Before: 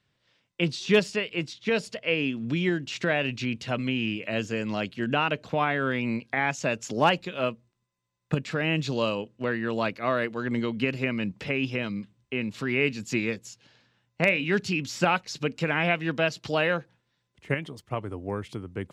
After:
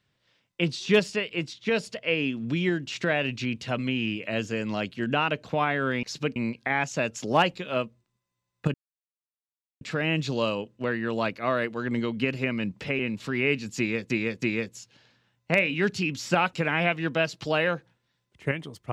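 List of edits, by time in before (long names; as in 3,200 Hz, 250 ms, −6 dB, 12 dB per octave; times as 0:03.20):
0:08.41: splice in silence 1.07 s
0:11.59–0:12.33: remove
0:13.12–0:13.44: repeat, 3 plays
0:15.23–0:15.56: move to 0:06.03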